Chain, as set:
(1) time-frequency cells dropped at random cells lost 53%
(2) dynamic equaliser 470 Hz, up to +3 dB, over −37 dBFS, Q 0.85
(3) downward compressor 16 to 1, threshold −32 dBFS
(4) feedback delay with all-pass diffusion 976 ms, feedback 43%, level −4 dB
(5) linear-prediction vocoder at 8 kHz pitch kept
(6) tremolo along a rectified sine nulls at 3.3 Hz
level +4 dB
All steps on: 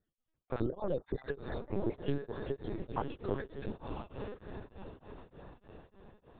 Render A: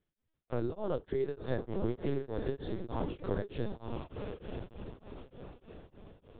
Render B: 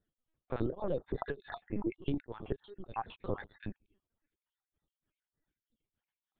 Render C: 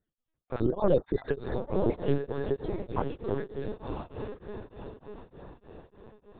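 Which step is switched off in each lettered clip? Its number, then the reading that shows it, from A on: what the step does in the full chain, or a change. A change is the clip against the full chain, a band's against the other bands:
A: 1, 1 kHz band −3.0 dB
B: 4, change in momentary loudness spread −9 LU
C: 3, average gain reduction 4.5 dB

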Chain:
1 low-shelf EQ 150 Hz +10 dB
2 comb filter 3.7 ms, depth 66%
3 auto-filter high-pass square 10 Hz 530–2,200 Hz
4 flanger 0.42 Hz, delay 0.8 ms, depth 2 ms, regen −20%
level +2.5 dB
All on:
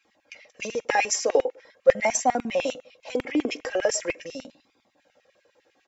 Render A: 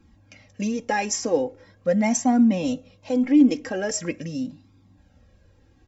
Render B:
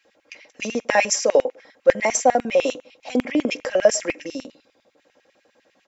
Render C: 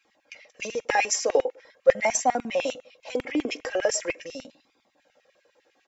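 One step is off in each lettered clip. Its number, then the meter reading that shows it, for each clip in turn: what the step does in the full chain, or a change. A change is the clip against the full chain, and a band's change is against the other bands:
3, 125 Hz band +15.5 dB
4, change in integrated loudness +4.5 LU
1, 125 Hz band −2.0 dB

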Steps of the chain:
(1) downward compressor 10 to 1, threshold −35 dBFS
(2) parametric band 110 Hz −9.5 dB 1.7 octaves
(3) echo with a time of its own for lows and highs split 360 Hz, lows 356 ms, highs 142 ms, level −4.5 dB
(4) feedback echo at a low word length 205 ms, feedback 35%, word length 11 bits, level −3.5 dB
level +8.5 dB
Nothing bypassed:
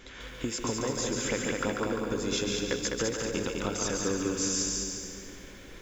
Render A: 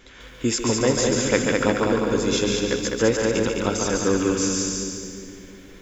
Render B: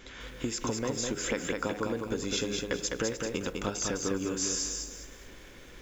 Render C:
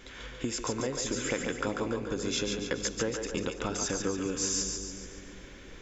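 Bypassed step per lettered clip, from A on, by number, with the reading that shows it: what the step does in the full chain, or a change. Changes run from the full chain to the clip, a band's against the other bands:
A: 1, average gain reduction 5.5 dB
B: 3, change in momentary loudness spread +4 LU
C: 4, change in momentary loudness spread +3 LU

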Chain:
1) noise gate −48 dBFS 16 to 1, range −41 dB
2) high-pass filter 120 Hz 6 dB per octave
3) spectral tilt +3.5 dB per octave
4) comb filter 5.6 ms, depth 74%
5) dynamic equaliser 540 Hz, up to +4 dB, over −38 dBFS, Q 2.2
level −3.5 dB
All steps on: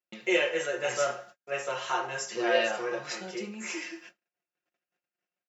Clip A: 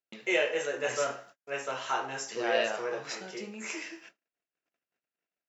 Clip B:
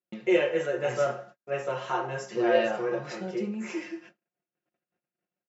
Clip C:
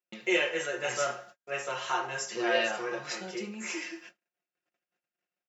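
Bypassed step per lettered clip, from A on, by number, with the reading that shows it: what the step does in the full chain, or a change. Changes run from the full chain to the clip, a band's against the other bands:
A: 4, 250 Hz band −2.0 dB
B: 3, 4 kHz band −9.5 dB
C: 5, change in integrated loudness −1.5 LU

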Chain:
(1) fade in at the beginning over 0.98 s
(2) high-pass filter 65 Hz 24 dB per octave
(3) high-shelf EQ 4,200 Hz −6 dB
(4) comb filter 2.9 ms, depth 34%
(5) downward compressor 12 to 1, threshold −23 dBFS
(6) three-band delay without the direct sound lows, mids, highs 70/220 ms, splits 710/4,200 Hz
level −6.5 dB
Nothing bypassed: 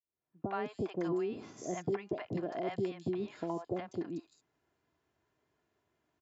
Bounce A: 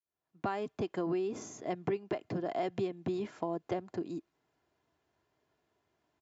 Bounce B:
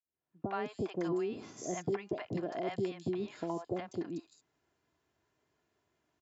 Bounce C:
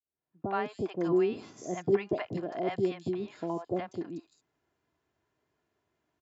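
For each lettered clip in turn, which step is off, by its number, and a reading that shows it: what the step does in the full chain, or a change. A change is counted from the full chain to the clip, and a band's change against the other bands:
6, echo-to-direct ratio 8.5 dB to none audible
3, 4 kHz band +2.5 dB
5, average gain reduction 3.0 dB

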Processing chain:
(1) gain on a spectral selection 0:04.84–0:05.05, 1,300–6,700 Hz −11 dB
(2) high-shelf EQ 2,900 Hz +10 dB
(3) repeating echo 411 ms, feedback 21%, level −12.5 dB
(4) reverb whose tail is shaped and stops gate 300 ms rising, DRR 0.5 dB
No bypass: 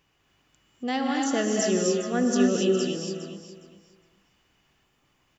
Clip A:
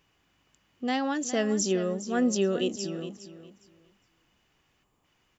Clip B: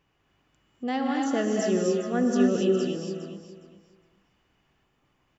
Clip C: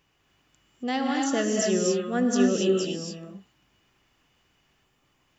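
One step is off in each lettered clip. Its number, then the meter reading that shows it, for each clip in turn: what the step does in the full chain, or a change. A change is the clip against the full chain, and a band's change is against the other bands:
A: 4, change in momentary loudness spread −1 LU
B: 2, 4 kHz band −6.0 dB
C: 3, change in momentary loudness spread −2 LU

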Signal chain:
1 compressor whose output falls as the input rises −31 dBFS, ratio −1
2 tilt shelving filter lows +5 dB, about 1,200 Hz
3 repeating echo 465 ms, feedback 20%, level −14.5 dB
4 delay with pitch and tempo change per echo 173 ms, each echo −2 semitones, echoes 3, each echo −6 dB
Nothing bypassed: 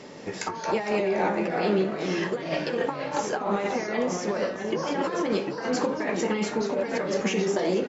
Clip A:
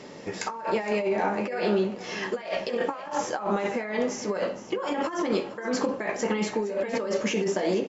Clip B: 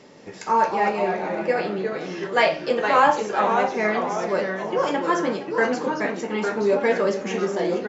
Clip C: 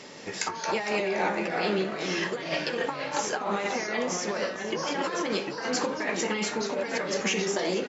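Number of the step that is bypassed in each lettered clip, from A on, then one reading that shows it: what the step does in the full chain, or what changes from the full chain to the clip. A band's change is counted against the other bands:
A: 4, change in integrated loudness −1.0 LU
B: 1, change in crest factor +3.5 dB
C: 2, 4 kHz band +7.5 dB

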